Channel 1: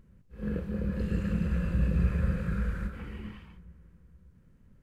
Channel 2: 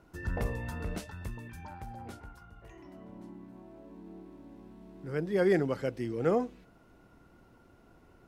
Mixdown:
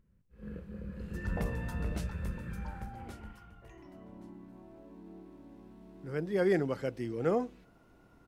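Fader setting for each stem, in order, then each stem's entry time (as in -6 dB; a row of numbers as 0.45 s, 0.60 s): -11.0 dB, -2.0 dB; 0.00 s, 1.00 s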